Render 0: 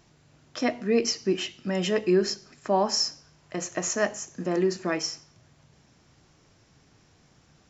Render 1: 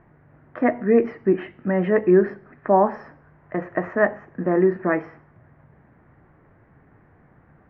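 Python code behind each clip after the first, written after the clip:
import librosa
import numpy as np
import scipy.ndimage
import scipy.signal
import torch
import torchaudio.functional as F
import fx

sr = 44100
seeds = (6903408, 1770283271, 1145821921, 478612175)

y = scipy.signal.sosfilt(scipy.signal.cheby1(4, 1.0, 1900.0, 'lowpass', fs=sr, output='sos'), x)
y = y * 10.0 ** (7.0 / 20.0)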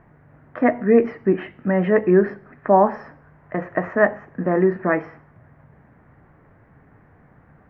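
y = fx.peak_eq(x, sr, hz=350.0, db=-4.5, octaves=0.22)
y = y * 10.0 ** (2.5 / 20.0)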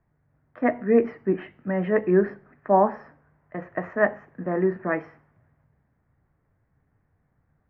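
y = fx.band_widen(x, sr, depth_pct=40)
y = y * 10.0 ** (-6.0 / 20.0)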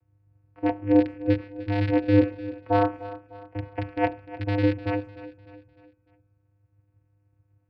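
y = fx.rattle_buzz(x, sr, strikes_db=-31.0, level_db=-13.0)
y = fx.vocoder(y, sr, bands=8, carrier='square', carrier_hz=101.0)
y = fx.echo_feedback(y, sr, ms=301, feedback_pct=45, wet_db=-16.0)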